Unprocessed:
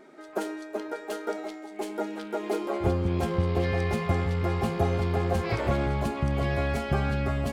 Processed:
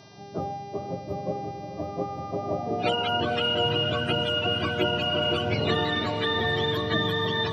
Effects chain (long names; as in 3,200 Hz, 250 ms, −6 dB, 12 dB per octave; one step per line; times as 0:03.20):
frequency axis turned over on the octave scale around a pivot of 500 Hz
hum with harmonics 400 Hz, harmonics 15, −57 dBFS −1 dB per octave
feedback delay with all-pass diffusion 504 ms, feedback 43%, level −8 dB
level +2.5 dB